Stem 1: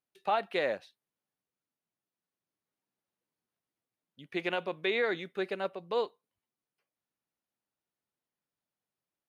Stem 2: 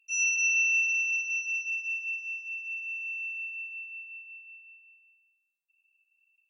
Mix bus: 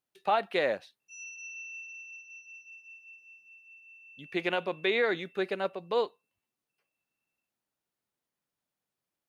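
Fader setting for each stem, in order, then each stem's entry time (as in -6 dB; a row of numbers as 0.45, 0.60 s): +2.5, -18.0 dB; 0.00, 1.00 s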